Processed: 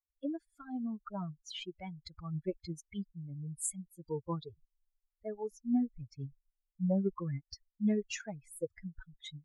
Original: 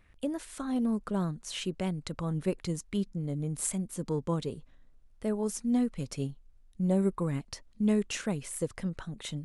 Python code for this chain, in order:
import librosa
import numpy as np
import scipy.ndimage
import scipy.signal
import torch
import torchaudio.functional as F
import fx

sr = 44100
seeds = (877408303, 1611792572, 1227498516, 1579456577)

y = fx.bin_expand(x, sr, power=3.0)
y = fx.lowpass(y, sr, hz=1700.0, slope=6, at=(5.48, 6.19))